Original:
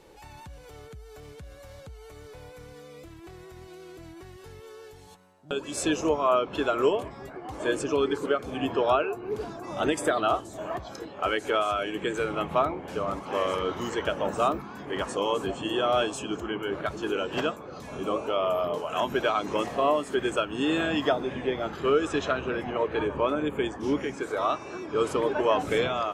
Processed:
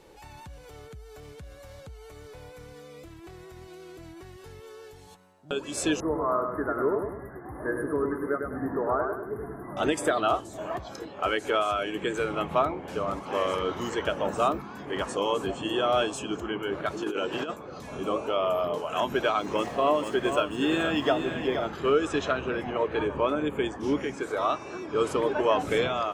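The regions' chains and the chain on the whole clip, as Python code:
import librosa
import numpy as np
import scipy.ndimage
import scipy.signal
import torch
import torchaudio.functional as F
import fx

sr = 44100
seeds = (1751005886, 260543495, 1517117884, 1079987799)

y = fx.chain(x, sr, fx.brickwall_bandstop(low_hz=2100.0, high_hz=9300.0),
    fx.peak_eq(hz=680.0, db=-6.0, octaves=1.8),
    fx.echo_feedback(ms=102, feedback_pct=40, wet_db=-5.0), at=(6.0, 9.77))
y = fx.chain(y, sr, fx.highpass(hz=160.0, slope=6),
    fx.peak_eq(hz=340.0, db=3.5, octaves=0.4),
    fx.over_compress(threshold_db=-29.0, ratio=-0.5), at=(16.87, 17.54))
y = fx.chain(y, sr, fx.median_filter(points=3),
    fx.echo_single(ms=473, db=-8.0), at=(19.39, 21.66))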